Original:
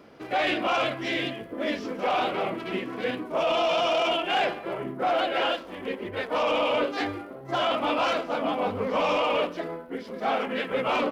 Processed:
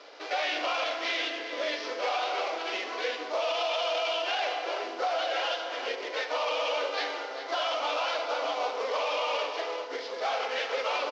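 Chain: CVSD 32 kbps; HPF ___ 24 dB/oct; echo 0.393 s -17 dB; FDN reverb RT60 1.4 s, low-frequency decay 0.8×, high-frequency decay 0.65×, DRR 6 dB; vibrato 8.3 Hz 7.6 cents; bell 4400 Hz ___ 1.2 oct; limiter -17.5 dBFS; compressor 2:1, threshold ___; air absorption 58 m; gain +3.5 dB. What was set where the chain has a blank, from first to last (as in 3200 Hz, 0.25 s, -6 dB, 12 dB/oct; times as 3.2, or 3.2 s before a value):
470 Hz, +8 dB, -35 dBFS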